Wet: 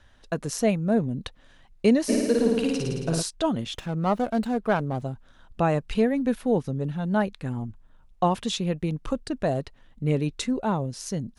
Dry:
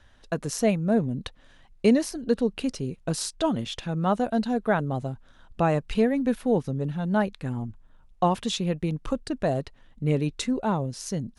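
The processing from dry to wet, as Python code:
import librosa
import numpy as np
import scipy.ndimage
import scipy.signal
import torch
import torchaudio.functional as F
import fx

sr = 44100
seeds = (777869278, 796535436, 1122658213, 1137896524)

y = fx.room_flutter(x, sr, wall_m=9.4, rt60_s=1.5, at=(2.08, 3.21), fade=0.02)
y = fx.running_max(y, sr, window=5, at=(3.74, 5.02))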